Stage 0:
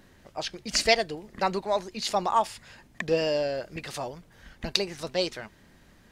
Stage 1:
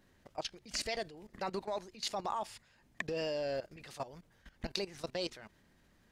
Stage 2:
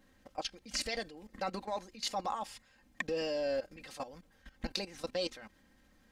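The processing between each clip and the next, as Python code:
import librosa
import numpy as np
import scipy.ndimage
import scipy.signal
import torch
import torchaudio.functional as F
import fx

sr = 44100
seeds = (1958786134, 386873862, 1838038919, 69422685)

y1 = fx.level_steps(x, sr, step_db=16)
y1 = F.gain(torch.from_numpy(y1), -3.5).numpy()
y2 = y1 + 0.62 * np.pad(y1, (int(3.8 * sr / 1000.0), 0))[:len(y1)]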